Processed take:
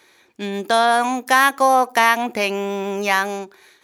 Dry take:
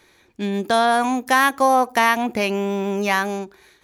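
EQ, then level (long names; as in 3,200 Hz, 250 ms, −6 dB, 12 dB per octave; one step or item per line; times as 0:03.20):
high-pass filter 390 Hz 6 dB per octave
+2.5 dB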